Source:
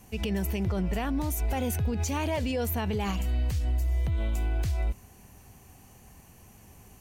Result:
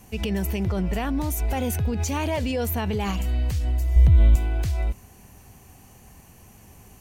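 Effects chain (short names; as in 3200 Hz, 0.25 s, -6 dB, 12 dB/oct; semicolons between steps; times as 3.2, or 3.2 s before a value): 3.96–4.36 low shelf 180 Hz +11.5 dB; gain +3.5 dB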